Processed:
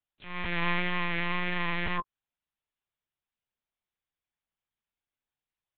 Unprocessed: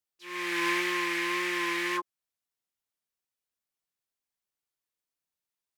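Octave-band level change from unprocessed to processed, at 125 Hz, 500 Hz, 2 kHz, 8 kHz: +16.5 dB, -4.0 dB, -2.0 dB, under -35 dB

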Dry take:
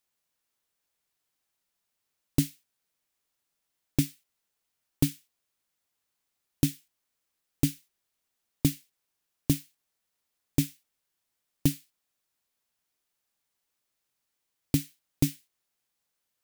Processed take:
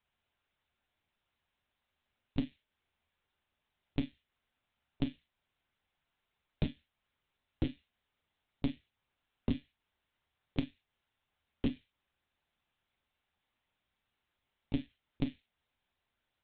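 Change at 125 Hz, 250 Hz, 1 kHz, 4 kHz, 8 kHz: -11.0 dB, -7.0 dB, -2.0 dB, -9.5 dB, under -40 dB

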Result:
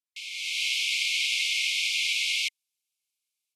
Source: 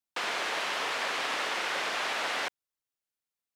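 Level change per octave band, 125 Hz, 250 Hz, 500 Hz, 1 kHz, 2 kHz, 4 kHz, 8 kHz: n/a, under -40 dB, under -40 dB, under -40 dB, +3.5 dB, +8.5 dB, +8.5 dB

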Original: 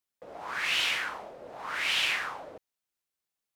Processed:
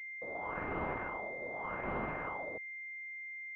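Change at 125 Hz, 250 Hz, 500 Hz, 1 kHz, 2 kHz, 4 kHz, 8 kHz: +10.5 dB, +8.5 dB, +3.5 dB, -2.0 dB, -8.0 dB, under -35 dB, under -35 dB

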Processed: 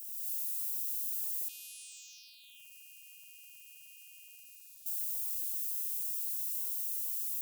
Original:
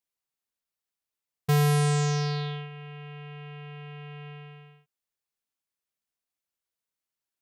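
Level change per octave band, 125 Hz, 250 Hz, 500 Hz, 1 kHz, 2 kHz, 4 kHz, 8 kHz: under -40 dB, n/a, under -40 dB, under -40 dB, -18.5 dB, -12.0 dB, +2.0 dB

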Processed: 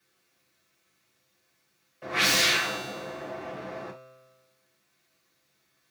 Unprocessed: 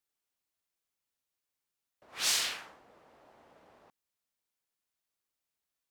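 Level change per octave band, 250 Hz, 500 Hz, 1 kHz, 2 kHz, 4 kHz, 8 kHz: +22.0, +19.5, +14.0, +14.0, +8.0, +4.0 dB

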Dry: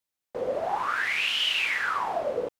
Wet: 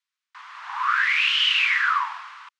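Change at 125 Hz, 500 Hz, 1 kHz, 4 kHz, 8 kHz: n/a, under -40 dB, +3.5 dB, +5.5 dB, -1.0 dB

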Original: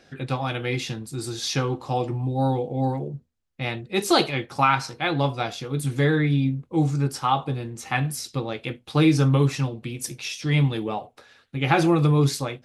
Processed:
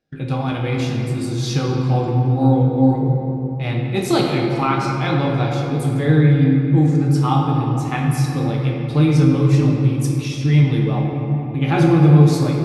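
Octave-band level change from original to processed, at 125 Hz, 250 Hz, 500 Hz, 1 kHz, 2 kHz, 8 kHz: +9.0, +8.0, +4.5, +2.0, 0.0, -1.0 dB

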